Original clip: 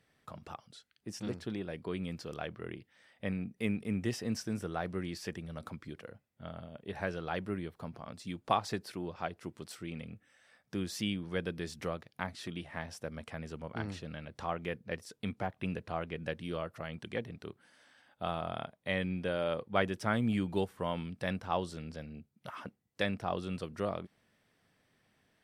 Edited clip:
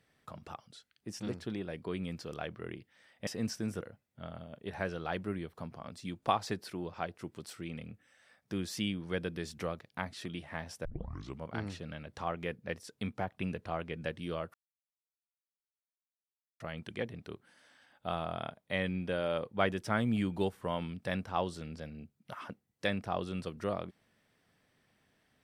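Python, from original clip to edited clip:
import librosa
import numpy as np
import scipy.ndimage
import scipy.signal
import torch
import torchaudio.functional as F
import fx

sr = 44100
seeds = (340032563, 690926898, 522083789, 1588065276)

y = fx.edit(x, sr, fx.cut(start_s=3.27, length_s=0.87),
    fx.cut(start_s=4.68, length_s=1.35),
    fx.tape_start(start_s=13.07, length_s=0.55),
    fx.insert_silence(at_s=16.76, length_s=2.06), tone=tone)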